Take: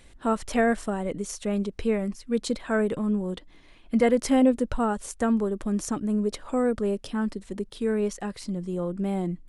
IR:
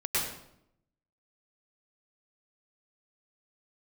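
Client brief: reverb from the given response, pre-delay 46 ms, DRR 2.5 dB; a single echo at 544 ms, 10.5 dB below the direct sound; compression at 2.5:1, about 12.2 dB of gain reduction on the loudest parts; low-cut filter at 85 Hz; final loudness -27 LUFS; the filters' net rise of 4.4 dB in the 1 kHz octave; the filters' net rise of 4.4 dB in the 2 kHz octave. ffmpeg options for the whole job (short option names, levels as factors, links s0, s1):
-filter_complex "[0:a]highpass=85,equalizer=f=1000:t=o:g=5.5,equalizer=f=2000:t=o:g=3.5,acompressor=threshold=0.02:ratio=2.5,aecho=1:1:544:0.299,asplit=2[s0][s1];[1:a]atrim=start_sample=2205,adelay=46[s2];[s1][s2]afir=irnorm=-1:irlink=0,volume=0.266[s3];[s0][s3]amix=inputs=2:normalize=0,volume=1.88"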